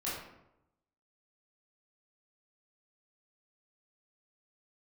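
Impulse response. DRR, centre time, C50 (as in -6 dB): -9.0 dB, 61 ms, 1.0 dB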